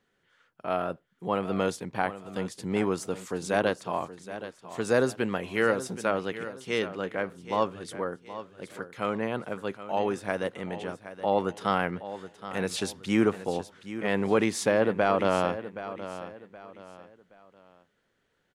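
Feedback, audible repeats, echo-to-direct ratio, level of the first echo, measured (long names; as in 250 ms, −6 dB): 33%, 3, −12.5 dB, −13.0 dB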